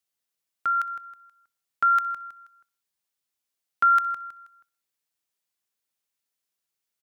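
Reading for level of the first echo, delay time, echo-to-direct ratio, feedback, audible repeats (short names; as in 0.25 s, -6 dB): -22.0 dB, 62 ms, -21.0 dB, 50%, 3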